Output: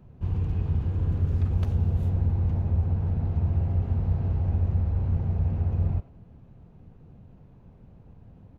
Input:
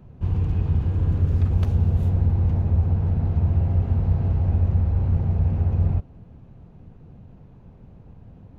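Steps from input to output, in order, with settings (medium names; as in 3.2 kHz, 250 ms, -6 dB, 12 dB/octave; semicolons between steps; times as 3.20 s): speakerphone echo 90 ms, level -14 dB; trim -4.5 dB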